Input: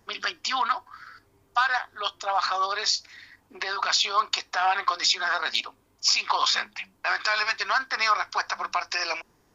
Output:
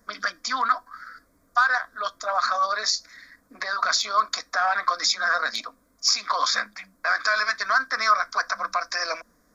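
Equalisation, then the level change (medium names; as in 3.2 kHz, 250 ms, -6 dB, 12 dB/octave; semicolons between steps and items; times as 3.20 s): static phaser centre 570 Hz, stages 8; +4.5 dB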